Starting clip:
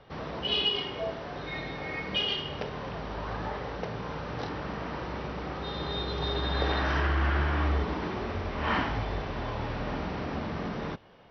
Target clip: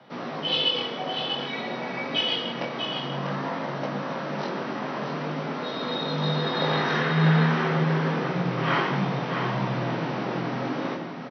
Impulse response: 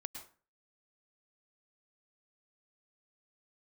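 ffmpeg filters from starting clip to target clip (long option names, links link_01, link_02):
-filter_complex "[0:a]afreqshift=88,flanger=delay=16:depth=7.6:speed=0.52,aecho=1:1:643:0.473,asplit=2[link_01][link_02];[1:a]atrim=start_sample=2205,asetrate=39249,aresample=44100[link_03];[link_02][link_03]afir=irnorm=-1:irlink=0,volume=4dB[link_04];[link_01][link_04]amix=inputs=2:normalize=0"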